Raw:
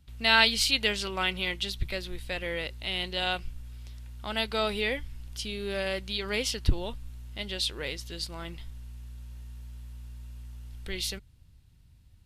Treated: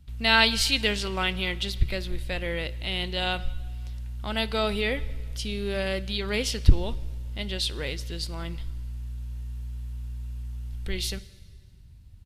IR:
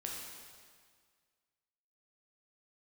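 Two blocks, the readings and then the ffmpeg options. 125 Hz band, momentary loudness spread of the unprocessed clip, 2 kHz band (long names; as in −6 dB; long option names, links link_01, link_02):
+7.5 dB, 21 LU, +1.0 dB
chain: -filter_complex "[0:a]lowshelf=frequency=240:gain=7.5,asplit=2[link_01][link_02];[link_02]adelay=169.1,volume=-28dB,highshelf=frequency=4000:gain=-3.8[link_03];[link_01][link_03]amix=inputs=2:normalize=0,asplit=2[link_04][link_05];[1:a]atrim=start_sample=2205,adelay=58[link_06];[link_05][link_06]afir=irnorm=-1:irlink=0,volume=-18dB[link_07];[link_04][link_07]amix=inputs=2:normalize=0,volume=1dB"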